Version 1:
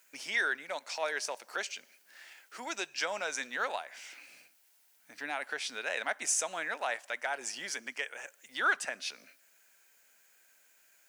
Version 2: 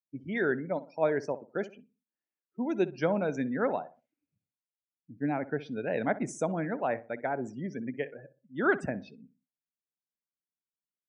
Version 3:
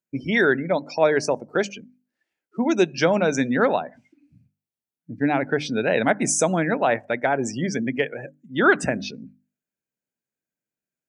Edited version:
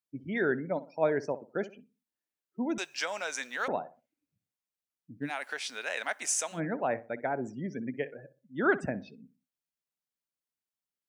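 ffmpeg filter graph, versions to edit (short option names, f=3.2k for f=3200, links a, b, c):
-filter_complex "[0:a]asplit=2[a][b];[1:a]asplit=3[c][d][e];[c]atrim=end=2.782[f];[a]atrim=start=2.778:end=3.682[g];[d]atrim=start=3.678:end=5.31[h];[b]atrim=start=5.21:end=6.61[i];[e]atrim=start=6.51[j];[f][g]acrossfade=d=0.004:c1=hsin:c2=hsin[k];[k][h]acrossfade=d=0.004:c1=hsin:c2=hsin[l];[l][i]acrossfade=d=0.1:c1=tri:c2=tri[m];[m][j]acrossfade=d=0.1:c1=tri:c2=tri"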